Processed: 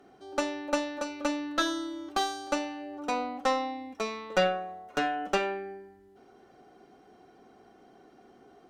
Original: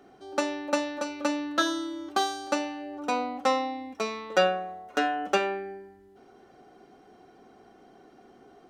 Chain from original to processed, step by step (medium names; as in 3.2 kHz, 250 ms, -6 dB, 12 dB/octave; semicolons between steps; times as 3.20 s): valve stage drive 12 dB, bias 0.5